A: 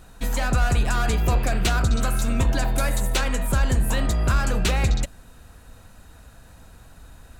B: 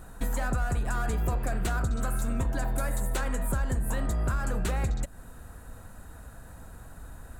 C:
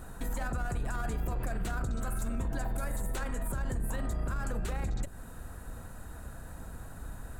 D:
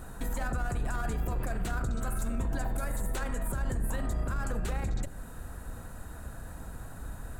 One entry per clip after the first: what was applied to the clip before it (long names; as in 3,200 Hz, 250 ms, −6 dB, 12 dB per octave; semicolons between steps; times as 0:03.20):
flat-topped bell 3,700 Hz −8.5 dB; downward compressor 4 to 1, threshold −28 dBFS, peak gain reduction 11 dB; level +1.5 dB
sub-octave generator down 1 octave, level −3 dB; brickwall limiter −27 dBFS, peak gain reduction 10.5 dB; level +1 dB
convolution reverb RT60 0.90 s, pre-delay 62 ms, DRR 15.5 dB; level +1.5 dB